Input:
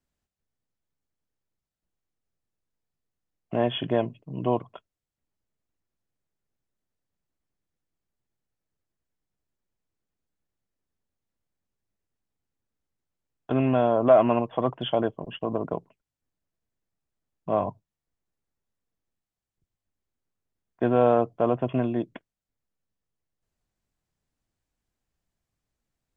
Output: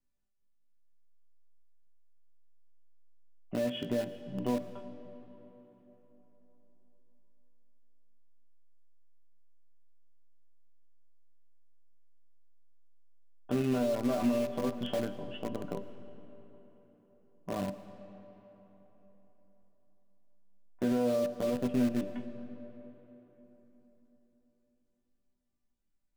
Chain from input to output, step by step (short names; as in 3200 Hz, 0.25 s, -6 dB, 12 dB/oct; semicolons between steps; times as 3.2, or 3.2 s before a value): low shelf 210 Hz +8 dB; resonator bank G3 major, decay 0.23 s; in parallel at -11 dB: bit-crush 6-bit; on the sum: limiter -26 dBFS, peak gain reduction 7.5 dB; dynamic EQ 870 Hz, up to -8 dB, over -50 dBFS, Q 1.1; on a send at -12 dB: reverb RT60 4.1 s, pre-delay 60 ms; on the sum: gain +7 dB